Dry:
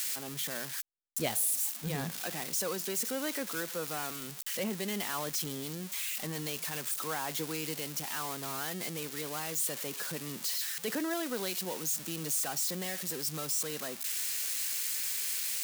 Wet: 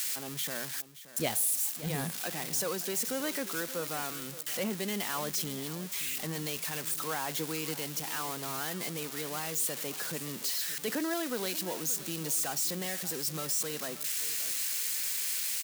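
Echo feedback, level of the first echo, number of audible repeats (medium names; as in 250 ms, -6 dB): 27%, -15.5 dB, 2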